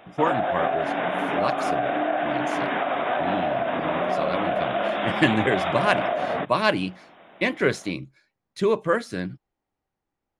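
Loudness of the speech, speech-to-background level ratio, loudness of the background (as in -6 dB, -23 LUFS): -27.0 LUFS, -1.5 dB, -25.5 LUFS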